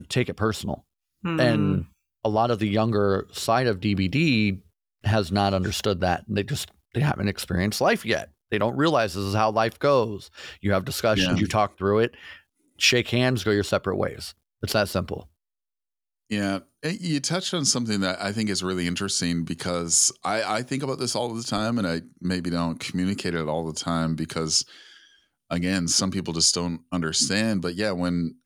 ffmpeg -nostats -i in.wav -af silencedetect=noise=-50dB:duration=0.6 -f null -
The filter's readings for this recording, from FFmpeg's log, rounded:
silence_start: 15.27
silence_end: 16.30 | silence_duration: 1.03